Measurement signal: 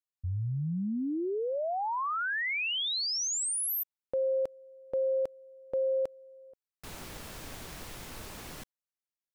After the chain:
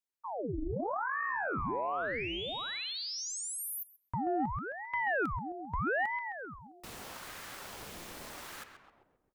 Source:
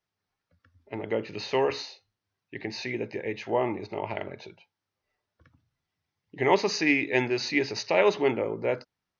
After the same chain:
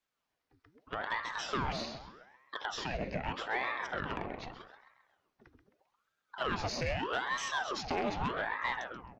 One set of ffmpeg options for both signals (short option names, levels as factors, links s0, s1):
-filter_complex "[0:a]acrossover=split=96|1000[s0][s1][s2];[s0]acompressor=threshold=0.00112:ratio=4[s3];[s1]acompressor=threshold=0.0282:ratio=4[s4];[s2]acompressor=threshold=0.0141:ratio=4[s5];[s3][s4][s5]amix=inputs=3:normalize=0,asplit=2[s6][s7];[s7]adelay=132,lowpass=f=2400:p=1,volume=0.422,asplit=2[s8][s9];[s9]adelay=132,lowpass=f=2400:p=1,volume=0.54,asplit=2[s10][s11];[s11]adelay=132,lowpass=f=2400:p=1,volume=0.54,asplit=2[s12][s13];[s13]adelay=132,lowpass=f=2400:p=1,volume=0.54,asplit=2[s14][s15];[s15]adelay=132,lowpass=f=2400:p=1,volume=0.54,asplit=2[s16][s17];[s17]adelay=132,lowpass=f=2400:p=1,volume=0.54,asplit=2[s18][s19];[s19]adelay=132,lowpass=f=2400:p=1,volume=0.54[s20];[s8][s10][s12][s14][s16][s18][s20]amix=inputs=7:normalize=0[s21];[s6][s21]amix=inputs=2:normalize=0,asoftclip=type=tanh:threshold=0.0668,aeval=exprs='val(0)*sin(2*PI*830*n/s+830*0.8/0.81*sin(2*PI*0.81*n/s))':c=same,volume=1.19"